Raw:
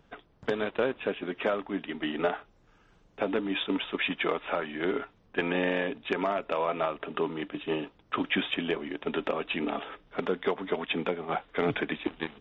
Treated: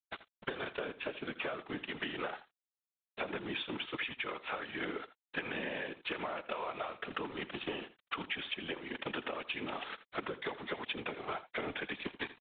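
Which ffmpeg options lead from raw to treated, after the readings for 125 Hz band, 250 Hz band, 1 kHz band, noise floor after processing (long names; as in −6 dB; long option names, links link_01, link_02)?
−9.5 dB, −11.5 dB, −8.0 dB, below −85 dBFS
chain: -af "aresample=8000,aeval=exprs='sgn(val(0))*max(abs(val(0))-0.00447,0)':channel_layout=same,aresample=44100,tiltshelf=frequency=870:gain=-4.5,afftfilt=real='hypot(re,im)*cos(2*PI*random(0))':imag='hypot(re,im)*sin(2*PI*random(1))':win_size=512:overlap=0.75,acompressor=threshold=-46dB:ratio=12,aecho=1:1:82:0.168,volume=10.5dB"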